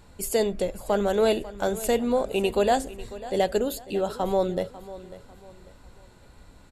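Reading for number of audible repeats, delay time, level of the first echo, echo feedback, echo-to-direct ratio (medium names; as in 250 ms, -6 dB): 2, 546 ms, -16.5 dB, 34%, -16.0 dB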